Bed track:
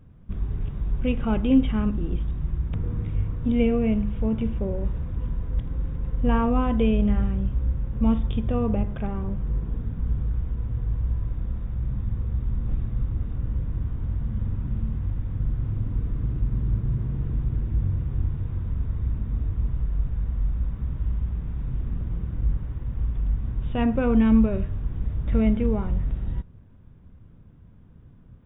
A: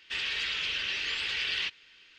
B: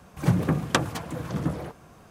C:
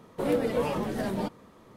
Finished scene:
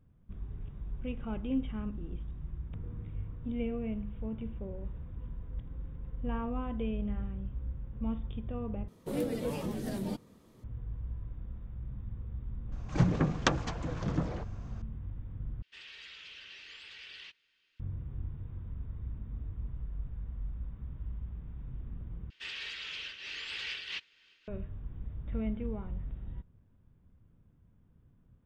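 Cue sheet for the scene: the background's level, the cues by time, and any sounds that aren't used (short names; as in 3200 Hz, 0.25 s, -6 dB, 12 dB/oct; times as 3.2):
bed track -13.5 dB
8.88 replace with C -1 dB + bell 1100 Hz -11.5 dB 3 oct
12.72 add B -4.5 dB + steep low-pass 7100 Hz 48 dB/oct
15.62 replace with A -17.5 dB
22.3 replace with A -5 dB + noise-modulated level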